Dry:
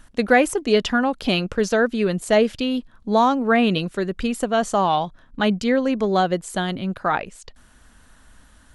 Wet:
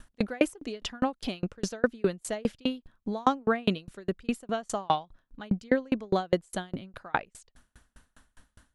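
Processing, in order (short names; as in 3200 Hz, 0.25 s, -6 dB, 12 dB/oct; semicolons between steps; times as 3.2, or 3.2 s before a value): dB-ramp tremolo decaying 4.9 Hz, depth 36 dB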